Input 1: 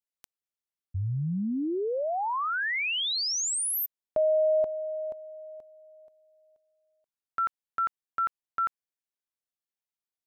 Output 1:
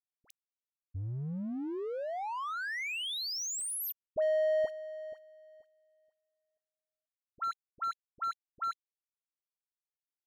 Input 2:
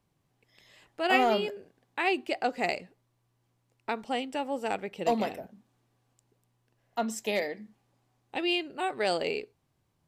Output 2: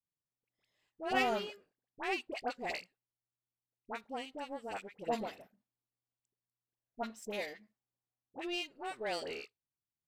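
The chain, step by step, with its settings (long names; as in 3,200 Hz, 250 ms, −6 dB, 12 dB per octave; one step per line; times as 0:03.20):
power curve on the samples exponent 1.4
all-pass dispersion highs, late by 63 ms, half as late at 1,100 Hz
level −4.5 dB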